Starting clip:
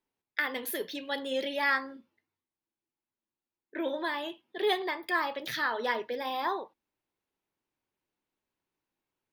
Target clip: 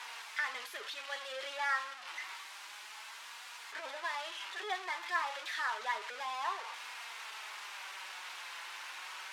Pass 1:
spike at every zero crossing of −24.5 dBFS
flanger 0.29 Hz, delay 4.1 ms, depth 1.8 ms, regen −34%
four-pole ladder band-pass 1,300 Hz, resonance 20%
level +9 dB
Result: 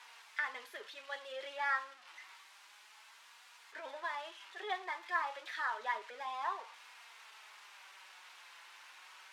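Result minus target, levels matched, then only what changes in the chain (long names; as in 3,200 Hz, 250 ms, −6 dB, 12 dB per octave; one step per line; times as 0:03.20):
spike at every zero crossing: distortion −10 dB
change: spike at every zero crossing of −14 dBFS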